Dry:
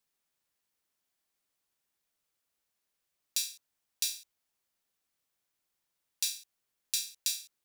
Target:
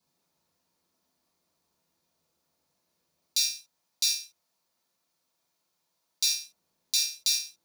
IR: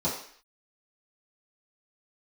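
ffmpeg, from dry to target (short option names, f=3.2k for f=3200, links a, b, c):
-filter_complex "[0:a]asettb=1/sr,asplit=3[a][b][c];[a]atrim=end=3.384[d];[b]atrim=start=3.38:end=6.23,asetpts=PTS-STARTPTS,afade=t=in:d=0.004:c=qsin,afade=t=out:st=2.846:d=0.004:c=qsin,lowshelf=f=500:g=-9[e];[c]atrim=start=6.226[f];[d][e]acrossfade=d=0.004:c1=hsin:c2=qsin[g];[g][f]acrossfade=d=0.004:c1=qsin:c2=hsin[h];[1:a]atrim=start_sample=2205,atrim=end_sample=3969[i];[h][i]afir=irnorm=-1:irlink=0"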